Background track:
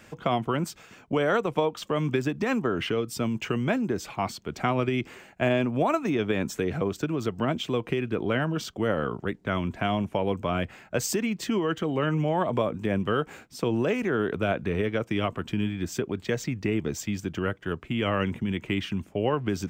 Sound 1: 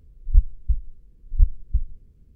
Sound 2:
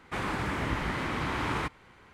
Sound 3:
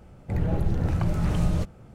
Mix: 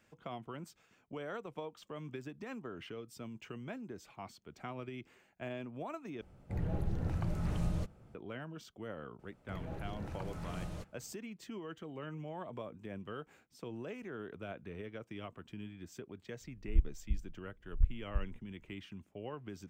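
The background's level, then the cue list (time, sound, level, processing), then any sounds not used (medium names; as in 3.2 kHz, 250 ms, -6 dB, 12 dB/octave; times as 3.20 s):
background track -18.5 dB
6.21 s: replace with 3 -10.5 dB
9.19 s: add 3 -12 dB + bass shelf 300 Hz -8.5 dB
16.41 s: add 1 -12.5 dB + tracing distortion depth 0.4 ms
not used: 2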